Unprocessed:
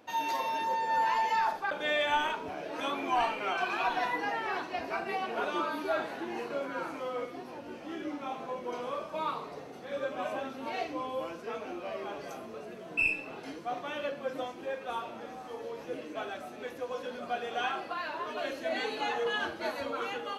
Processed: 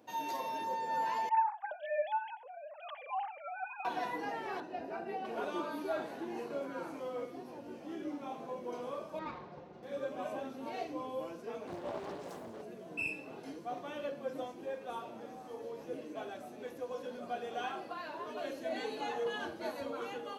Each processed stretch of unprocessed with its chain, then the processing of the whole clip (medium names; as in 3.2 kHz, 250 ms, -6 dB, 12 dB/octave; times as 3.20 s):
1.29–3.85 s: formants replaced by sine waves + delay 88 ms -22 dB
4.60–5.25 s: treble shelf 3.5 kHz -11 dB + comb of notches 1.1 kHz
9.19–9.83 s: comb filter that takes the minimum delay 5.6 ms + distance through air 200 m
11.67–12.62 s: doubling 17 ms -5.5 dB + flutter echo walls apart 5.6 m, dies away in 0.2 s + loudspeaker Doppler distortion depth 0.75 ms
whole clip: high-pass 91 Hz; peaking EQ 2.2 kHz -8 dB 2.8 oct; band-stop 1.3 kHz, Q 22; trim -1.5 dB